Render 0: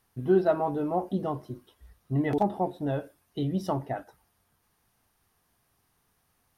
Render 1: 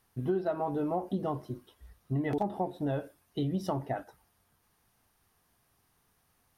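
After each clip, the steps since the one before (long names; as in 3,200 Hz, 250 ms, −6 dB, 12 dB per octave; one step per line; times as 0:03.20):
downward compressor 6 to 1, threshold −27 dBFS, peak gain reduction 10 dB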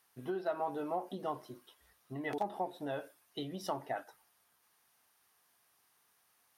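high-pass filter 960 Hz 6 dB per octave
level +1.5 dB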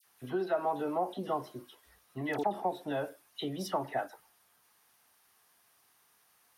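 all-pass dispersion lows, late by 55 ms, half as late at 1,900 Hz
level +4.5 dB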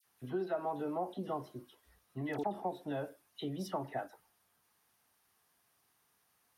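low-shelf EQ 340 Hz +8 dB
level −7 dB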